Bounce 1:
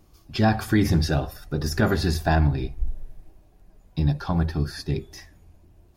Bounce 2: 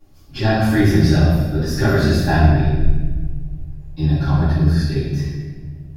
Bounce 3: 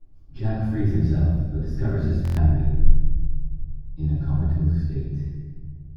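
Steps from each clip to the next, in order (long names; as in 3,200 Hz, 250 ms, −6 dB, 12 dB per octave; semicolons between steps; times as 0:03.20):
convolution reverb RT60 1.4 s, pre-delay 4 ms, DRR −14 dB; level −9 dB
spectral tilt −3.5 dB per octave; buffer that repeats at 0:02.23, samples 1,024, times 5; level −17 dB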